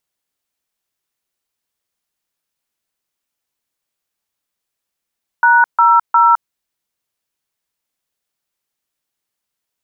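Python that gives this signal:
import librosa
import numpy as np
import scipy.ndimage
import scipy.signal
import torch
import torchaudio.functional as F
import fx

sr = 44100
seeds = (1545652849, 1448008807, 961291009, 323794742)

y = fx.dtmf(sr, digits='#00', tone_ms=211, gap_ms=145, level_db=-9.5)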